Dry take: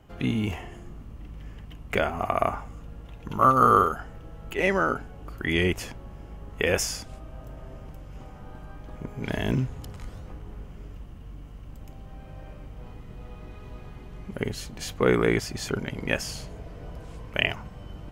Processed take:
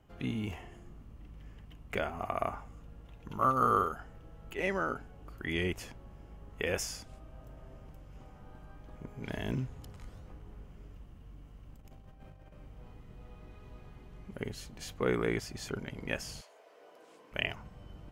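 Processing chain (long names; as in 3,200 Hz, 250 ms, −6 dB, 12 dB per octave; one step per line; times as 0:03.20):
0:11.76–0:12.53: compressor whose output falls as the input rises −43 dBFS, ratio −0.5
0:16.40–0:17.31: high-pass filter 600 Hz → 250 Hz 24 dB per octave
level −9 dB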